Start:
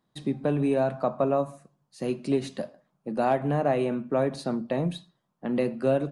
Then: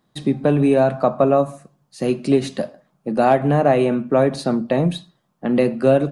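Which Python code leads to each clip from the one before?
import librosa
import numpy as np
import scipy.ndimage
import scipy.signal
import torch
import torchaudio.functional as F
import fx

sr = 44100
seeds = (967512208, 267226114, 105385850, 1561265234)

y = fx.notch(x, sr, hz=970.0, q=18.0)
y = y * librosa.db_to_amplitude(9.0)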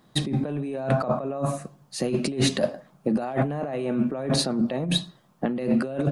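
y = fx.over_compress(x, sr, threshold_db=-26.0, ratio=-1.0)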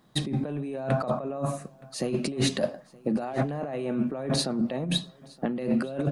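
y = x + 10.0 ** (-24.0 / 20.0) * np.pad(x, (int(920 * sr / 1000.0), 0))[:len(x)]
y = y * librosa.db_to_amplitude(-3.0)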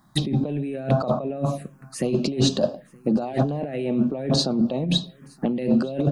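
y = fx.env_phaser(x, sr, low_hz=460.0, high_hz=2100.0, full_db=-23.5)
y = y * librosa.db_to_amplitude(6.0)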